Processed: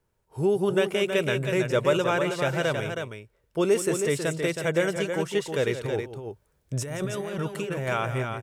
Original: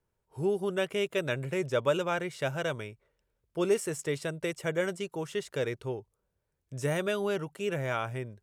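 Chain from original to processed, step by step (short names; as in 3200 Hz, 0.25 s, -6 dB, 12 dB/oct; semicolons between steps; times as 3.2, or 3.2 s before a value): in parallel at 0 dB: limiter -22 dBFS, peak gain reduction 6.5 dB; 5.84–7.88 on the sum: negative-ratio compressor -31 dBFS, ratio -1; tapped delay 0.173/0.32 s -11.5/-6.5 dB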